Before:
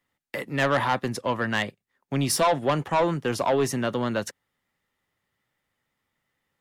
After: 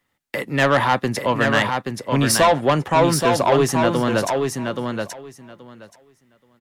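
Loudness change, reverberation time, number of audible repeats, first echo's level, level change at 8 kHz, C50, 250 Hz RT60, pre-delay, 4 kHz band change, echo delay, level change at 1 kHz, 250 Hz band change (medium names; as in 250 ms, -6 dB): +6.0 dB, no reverb, 2, -5.0 dB, +7.0 dB, no reverb, no reverb, no reverb, +7.5 dB, 827 ms, +7.0 dB, +7.0 dB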